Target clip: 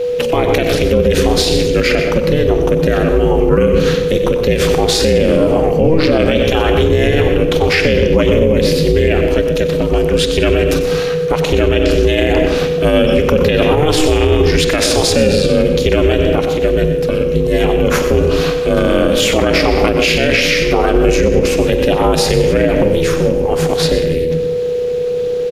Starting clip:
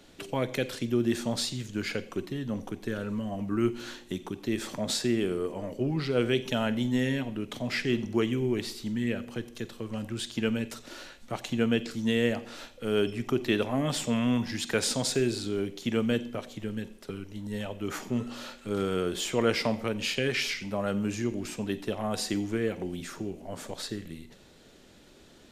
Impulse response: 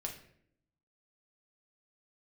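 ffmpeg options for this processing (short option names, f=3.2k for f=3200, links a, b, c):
-filter_complex "[0:a]asplit=2[a][b];[1:a]atrim=start_sample=2205,lowshelf=f=210:g=10.5,adelay=120[c];[b][c]afir=irnorm=-1:irlink=0,volume=-10dB[d];[a][d]amix=inputs=2:normalize=0,aeval=exprs='val(0)*sin(2*PI*160*n/s)':c=same,aeval=exprs='val(0)+0.00891*sin(2*PI*490*n/s)':c=same,equalizer=f=500:t=o:w=0.33:g=5,equalizer=f=2.5k:t=o:w=0.33:g=4,equalizer=f=8k:t=o:w=0.33:g=-7,asplit=2[e][f];[f]asplit=6[g][h][i][j][k][l];[g]adelay=95,afreqshift=-31,volume=-15dB[m];[h]adelay=190,afreqshift=-62,volume=-19.7dB[n];[i]adelay=285,afreqshift=-93,volume=-24.5dB[o];[j]adelay=380,afreqshift=-124,volume=-29.2dB[p];[k]adelay=475,afreqshift=-155,volume=-33.9dB[q];[l]adelay=570,afreqshift=-186,volume=-38.7dB[r];[m][n][o][p][q][r]amix=inputs=6:normalize=0[s];[e][s]amix=inputs=2:normalize=0,alimiter=level_in=23dB:limit=-1dB:release=50:level=0:latency=1,volume=-1dB"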